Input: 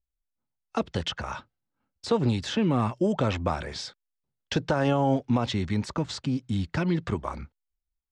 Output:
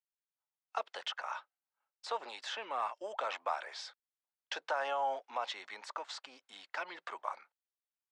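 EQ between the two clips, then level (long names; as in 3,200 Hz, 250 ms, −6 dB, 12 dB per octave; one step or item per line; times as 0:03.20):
high-pass filter 690 Hz 24 dB per octave
high-shelf EQ 3,300 Hz −9 dB
−3.0 dB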